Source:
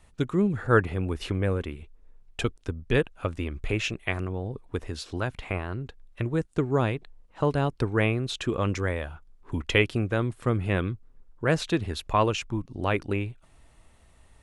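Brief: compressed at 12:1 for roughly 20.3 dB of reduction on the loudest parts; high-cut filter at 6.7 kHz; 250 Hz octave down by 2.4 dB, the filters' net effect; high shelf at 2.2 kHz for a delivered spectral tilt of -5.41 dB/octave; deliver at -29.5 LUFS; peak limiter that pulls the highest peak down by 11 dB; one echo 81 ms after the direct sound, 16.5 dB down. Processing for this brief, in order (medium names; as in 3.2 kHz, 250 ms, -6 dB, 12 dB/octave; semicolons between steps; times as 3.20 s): low-pass 6.7 kHz; peaking EQ 250 Hz -3.5 dB; treble shelf 2.2 kHz +3.5 dB; compression 12:1, threshold -36 dBFS; peak limiter -33.5 dBFS; delay 81 ms -16.5 dB; trim +15.5 dB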